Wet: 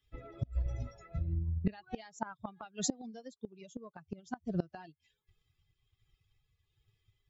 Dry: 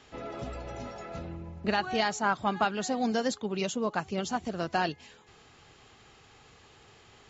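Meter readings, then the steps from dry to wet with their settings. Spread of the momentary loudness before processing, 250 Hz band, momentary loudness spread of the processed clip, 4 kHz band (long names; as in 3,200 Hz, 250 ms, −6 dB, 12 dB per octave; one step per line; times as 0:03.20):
13 LU, −7.5 dB, 13 LU, −13.5 dB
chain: spectral dynamics exaggerated over time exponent 2
low-shelf EQ 150 Hz +11.5 dB
gate with flip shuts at −27 dBFS, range −24 dB
transient designer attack +3 dB, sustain −1 dB
amplitude tremolo 1.3 Hz, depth 38%
level +6.5 dB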